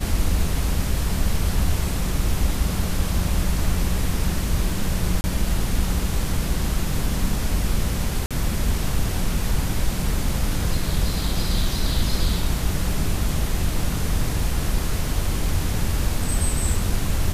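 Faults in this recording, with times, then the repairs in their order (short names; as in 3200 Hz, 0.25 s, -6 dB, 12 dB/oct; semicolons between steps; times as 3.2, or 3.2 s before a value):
5.21–5.24 gap 30 ms
8.26–8.31 gap 46 ms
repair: interpolate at 5.21, 30 ms; interpolate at 8.26, 46 ms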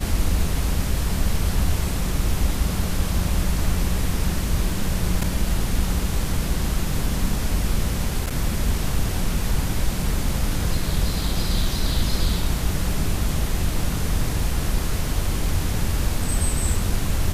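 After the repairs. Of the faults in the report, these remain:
none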